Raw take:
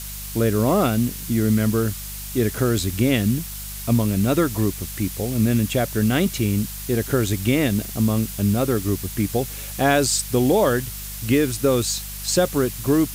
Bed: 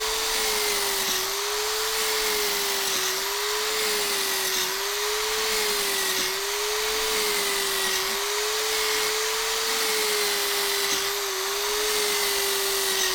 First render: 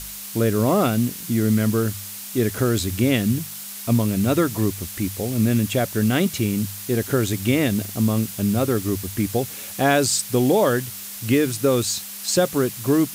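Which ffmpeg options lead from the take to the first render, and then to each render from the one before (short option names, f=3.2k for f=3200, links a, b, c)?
-af "bandreject=f=50:t=h:w=4,bandreject=f=100:t=h:w=4,bandreject=f=150:t=h:w=4"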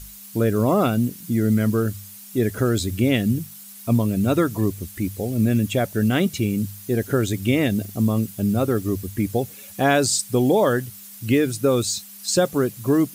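-af "afftdn=nr=11:nf=-35"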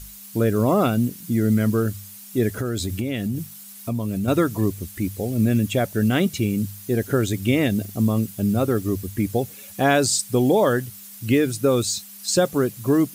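-filter_complex "[0:a]asettb=1/sr,asplit=3[a][b][c];[a]atrim=end=2.584[d];[b]atrim=start=2.58:end=4.28,asetpts=PTS-STARTPTS,afade=t=in:d=0.004:c=qsin,afade=t=out:st=1.696:d=0.004:c=qsin,acompressor=threshold=-21dB:ratio=6:attack=3.2:release=140:knee=1:detection=peak[e];[c]atrim=start=4.276[f];[d][e]acrossfade=d=0.004:c1=hsin:c2=qsin[g];[g][f]acrossfade=d=0.004:c1=qsin:c2=hsin"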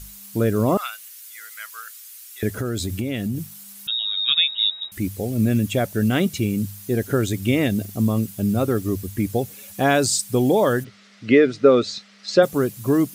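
-filter_complex "[0:a]asettb=1/sr,asplit=3[a][b][c];[a]atrim=end=0.774[d];[b]atrim=start=0.77:end=2.43,asetpts=PTS-STARTPTS,afade=t=in:d=0.004:c=qsin,afade=t=out:st=1.656:d=0.004:c=qsin,highpass=f=1.3k:w=0.5412,highpass=f=1.3k:w=1.3066[e];[c]atrim=start=2.426[f];[d][e]acrossfade=d=0.004:c1=hsin:c2=qsin[g];[g][f]acrossfade=d=0.004:c1=qsin:c2=hsin,asettb=1/sr,asplit=3[h][i][j];[h]atrim=end=3.874[k];[i]atrim=start=3.87:end=4.92,asetpts=PTS-STARTPTS,afade=t=in:d=0.004:c=qsin,afade=t=out:st=1.046:d=0.004:c=qsin,lowpass=f=3.3k:t=q:w=0.5098,lowpass=f=3.3k:t=q:w=0.6013,lowpass=f=3.3k:t=q:w=0.9,lowpass=f=3.3k:t=q:w=2.563,afreqshift=-3900[l];[j]atrim=start=4.916[m];[k][l]acrossfade=d=0.004:c1=hsin:c2=qsin[n];[n][m]acrossfade=d=0.004:c1=qsin:c2=hsin,asplit=3[o][p][q];[o]afade=t=out:st=10.83:d=0.02[r];[p]highpass=180,equalizer=f=250:t=q:w=4:g=4,equalizer=f=430:t=q:w=4:g=7,equalizer=f=610:t=q:w=4:g=7,equalizer=f=930:t=q:w=4:g=-3,equalizer=f=1.3k:t=q:w=4:g=8,equalizer=f=2k:t=q:w=4:g=8,lowpass=f=4.8k:w=0.5412,lowpass=f=4.8k:w=1.3066,afade=t=in:st=10.83:d=0.02,afade=t=out:st=12.42:d=0.02[s];[q]afade=t=in:st=12.42:d=0.02[t];[r][s][t]amix=inputs=3:normalize=0"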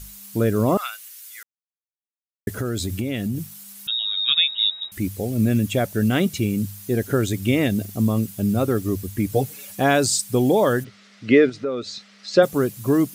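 -filter_complex "[0:a]asettb=1/sr,asplit=3[a][b][c];[a]atrim=end=9.314[d];[b]atrim=start=9.31:end=9.75,asetpts=PTS-STARTPTS,afade=t=in:d=0.004:c=qsin,afade=t=out:st=0.436:d=0.004:c=qsin,aecho=1:1:6.6:0.79,atrim=end_sample=19404[e];[c]atrim=start=9.746[f];[d][e]acrossfade=d=0.004:c1=hsin:c2=qsin[g];[g][f]acrossfade=d=0.004:c1=qsin:c2=hsin,asettb=1/sr,asplit=3[h][i][j];[h]atrim=end=11.494[k];[i]atrim=start=11.49:end=12.34,asetpts=PTS-STARTPTS,afade=t=in:d=0.004:c=qsin,afade=t=out:st=0.846:d=0.004:c=qsin,acompressor=threshold=-32dB:ratio=2:attack=3.2:release=140:knee=1:detection=peak[l];[j]atrim=start=12.336[m];[k][l]acrossfade=d=0.004:c1=hsin:c2=qsin[n];[n][m]acrossfade=d=0.004:c1=qsin:c2=hsin,asplit=3[o][p][q];[o]atrim=end=1.43,asetpts=PTS-STARTPTS,afade=t=out:st=1.426:d=0.004:c=hsin[r];[p]atrim=start=1.43:end=2.47,asetpts=PTS-STARTPTS,volume=0[s];[q]atrim=start=2.47,asetpts=PTS-STARTPTS,afade=t=in:d=0.004:c=hsin[t];[r][s][t]concat=n=3:v=0:a=1"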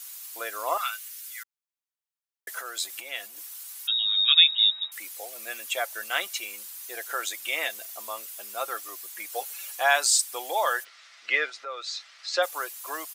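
-af "highpass=f=770:w=0.5412,highpass=f=770:w=1.3066,aecho=1:1:5.9:0.36"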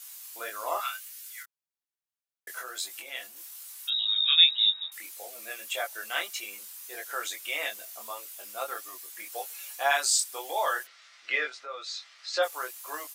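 -af "flanger=delay=20:depth=3.6:speed=1.7"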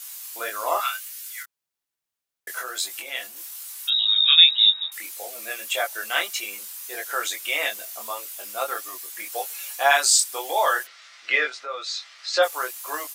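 -af "volume=7dB,alimiter=limit=-2dB:level=0:latency=1"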